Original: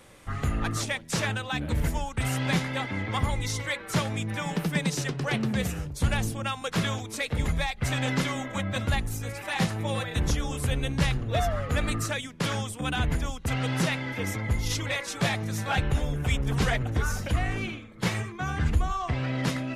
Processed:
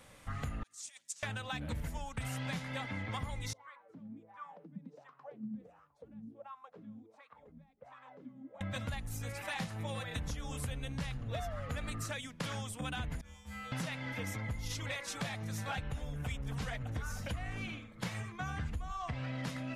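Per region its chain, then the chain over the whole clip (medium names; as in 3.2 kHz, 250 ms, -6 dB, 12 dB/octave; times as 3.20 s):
0.63–1.23 s: compressor with a negative ratio -33 dBFS, ratio -0.5 + band-pass filter 7.4 kHz, Q 2.3
3.53–8.61 s: compression 3:1, threshold -27 dBFS + wah-wah 1.4 Hz 200–1200 Hz, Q 9.1
13.21–13.72 s: hum notches 60/120/180/240/300/360/420/480 Hz + feedback comb 69 Hz, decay 0.79 s, harmonics odd, mix 100% + flutter echo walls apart 4.2 m, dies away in 0.54 s
whole clip: peaking EQ 370 Hz -13 dB 0.28 oct; compression, threshold -31 dBFS; trim -4.5 dB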